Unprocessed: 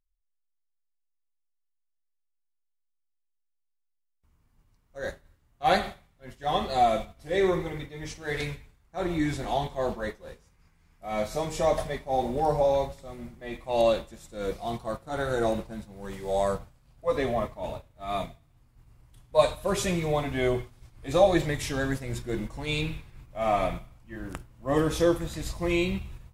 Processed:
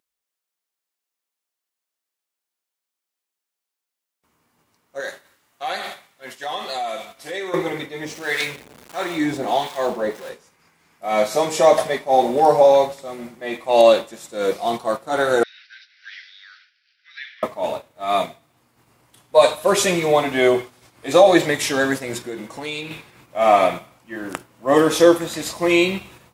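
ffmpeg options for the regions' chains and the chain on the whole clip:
-filter_complex "[0:a]asettb=1/sr,asplit=3[s0][s1][s2];[s0]atrim=end=5.004[s3];[s1]atrim=start=5:end=7.54,asetpts=PTS-STARTPTS,afade=t=in:d=0.004:c=qsin,afade=t=out:st=2.536:d=0.004:c=qsin,acompressor=threshold=0.0141:ratio=4:attack=3.2:release=140:knee=1:detection=peak,tiltshelf=f=810:g=-5[s4];[s2]atrim=start=7.536[s5];[s3][s4]acrossfade=d=0.004:c1=hsin:c2=qsin[s6];[s6][s5]acrossfade=d=0.004:c1=qsin:c2=hsin,asettb=1/sr,asplit=3[s7][s8][s9];[s7]atrim=end=8.054[s10];[s8]atrim=start=8.05:end=10.29,asetpts=PTS-STARTPTS,afade=t=in:d=0.004:c=qsin,afade=t=out:st=2.236:d=0.004:c=qsin,aeval=exprs='val(0)+0.5*0.00891*sgn(val(0))':c=same,acrossover=split=950[s11][s12];[s11]aeval=exprs='val(0)*(1-0.7/2+0.7/2*cos(2*PI*1.5*n/s))':c=same[s13];[s12]aeval=exprs='val(0)*(1-0.7/2-0.7/2*cos(2*PI*1.5*n/s))':c=same[s14];[s13][s14]amix=inputs=2:normalize=0[s15];[s9]atrim=start=10.286[s16];[s10][s15]acrossfade=d=0.004:c1=hsin:c2=qsin[s17];[s17][s16]acrossfade=d=0.004:c1=qsin:c2=hsin,asettb=1/sr,asplit=3[s18][s19][s20];[s18]atrim=end=15.434[s21];[s19]atrim=start=15.43:end=17.43,asetpts=PTS-STARTPTS,afade=t=in:d=0.004:c=qsin,afade=t=out:st=1.996:d=0.004:c=qsin,acompressor=threshold=0.0251:ratio=10:attack=3.2:release=140:knee=1:detection=peak,asuperpass=centerf=2900:order=20:qfactor=0.71[s22];[s20]atrim=start=17.426[s23];[s21][s22]acrossfade=d=0.004:c1=hsin:c2=qsin[s24];[s24][s23]acrossfade=d=0.004:c1=qsin:c2=hsin,asettb=1/sr,asplit=3[s25][s26][s27];[s25]atrim=end=22.174[s28];[s26]atrim=start=22.17:end=22.91,asetpts=PTS-STARTPTS,afade=t=in:d=0.004:c=qsin,afade=t=out:st=0.736:d=0.004:c=qsin,highpass=42,acompressor=threshold=0.02:ratio=12:attack=3.2:release=140:knee=1:detection=peak[s29];[s27]atrim=start=22.906[s30];[s28][s29]acrossfade=d=0.004:c1=hsin:c2=qsin[s31];[s31][s30]acrossfade=d=0.004:c1=qsin:c2=hsin,highpass=290,alimiter=level_in=4.22:limit=0.891:release=50:level=0:latency=1,volume=0.891"

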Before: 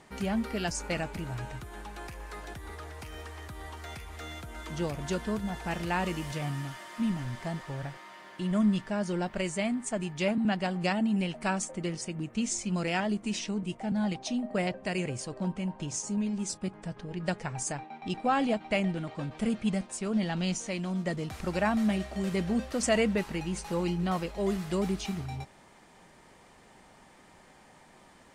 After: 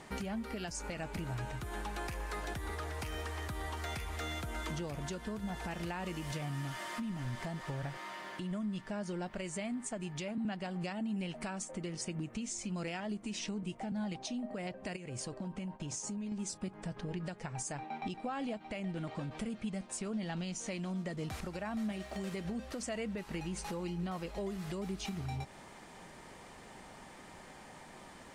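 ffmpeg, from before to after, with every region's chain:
-filter_complex "[0:a]asettb=1/sr,asplit=3[s0][s1][s2];[s0]atrim=end=14.964[s3];[s1]atrim=start=14.96:end=16.32,asetpts=PTS-STARTPTS,afade=t=in:d=0.004:c=qsin,afade=t=out:st=1.356:d=0.004:c=qsin,agate=range=0.0224:threshold=0.01:ratio=3:release=100:detection=peak,acompressor=threshold=0.01:ratio=10:attack=3.2:release=140:knee=1:detection=peak[s4];[s2]atrim=start=16.316[s5];[s3][s4]acrossfade=d=0.004:c1=hsin:c2=qsin[s6];[s6][s5]acrossfade=d=0.004:c1=qsin:c2=hsin,asettb=1/sr,asplit=3[s7][s8][s9];[s7]atrim=end=21.924[s10];[s8]atrim=start=21.92:end=22.45,asetpts=PTS-STARTPTS,afade=t=in:d=0.004:c=qsin,afade=t=out:st=0.526:d=0.004:c=qsin,lowshelf=f=240:g=-6,aeval=exprs='sgn(val(0))*max(abs(val(0))-0.00106,0)':c=same[s11];[s9]atrim=start=22.446[s12];[s10][s11]acrossfade=d=0.004:c1=hsin:c2=qsin[s13];[s13][s12]acrossfade=d=0.004:c1=qsin:c2=hsin,acompressor=threshold=0.0112:ratio=6,alimiter=level_in=2.99:limit=0.0631:level=0:latency=1:release=164,volume=0.335,volume=1.58"

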